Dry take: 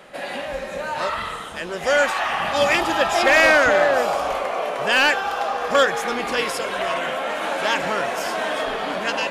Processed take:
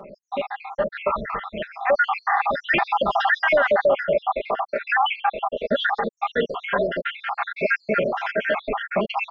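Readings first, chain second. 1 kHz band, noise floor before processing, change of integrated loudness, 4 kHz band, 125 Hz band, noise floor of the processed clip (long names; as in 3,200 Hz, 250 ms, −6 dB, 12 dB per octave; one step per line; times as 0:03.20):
−1.0 dB, −32 dBFS, −2.5 dB, −7.0 dB, +1.0 dB, −64 dBFS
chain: time-frequency cells dropped at random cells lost 74%
Gaussian smoothing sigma 2.9 samples
comb filter 5 ms, depth 55%
brickwall limiter −16.5 dBFS, peak gain reduction 10.5 dB
level +6 dB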